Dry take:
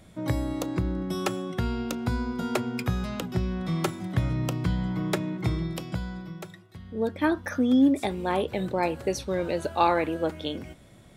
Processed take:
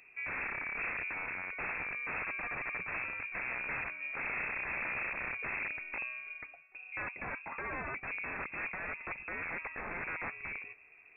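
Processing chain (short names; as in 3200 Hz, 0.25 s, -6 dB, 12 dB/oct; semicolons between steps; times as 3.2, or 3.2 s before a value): wrapped overs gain 25 dB; inverted band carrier 2600 Hz; gain -7 dB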